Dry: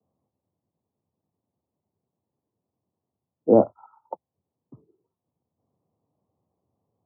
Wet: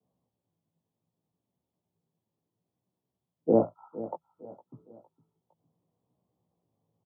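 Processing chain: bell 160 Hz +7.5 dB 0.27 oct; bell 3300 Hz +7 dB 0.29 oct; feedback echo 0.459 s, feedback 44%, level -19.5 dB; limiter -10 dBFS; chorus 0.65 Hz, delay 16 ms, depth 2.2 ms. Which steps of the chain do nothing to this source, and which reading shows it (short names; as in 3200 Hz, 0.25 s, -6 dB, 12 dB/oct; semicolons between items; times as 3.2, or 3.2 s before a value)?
bell 3300 Hz: input band ends at 1100 Hz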